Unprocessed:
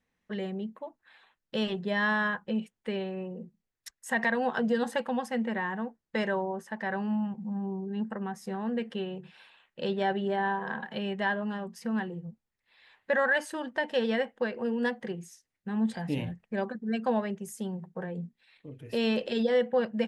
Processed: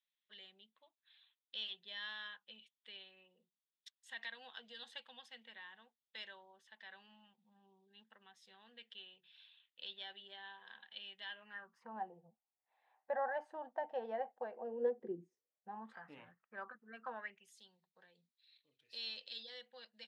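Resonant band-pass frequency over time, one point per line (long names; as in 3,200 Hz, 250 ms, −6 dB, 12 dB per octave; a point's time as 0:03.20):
resonant band-pass, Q 5.6
0:11.26 3,500 Hz
0:11.98 760 Hz
0:14.57 760 Hz
0:15.20 290 Hz
0:15.94 1,300 Hz
0:17.11 1,300 Hz
0:17.59 4,100 Hz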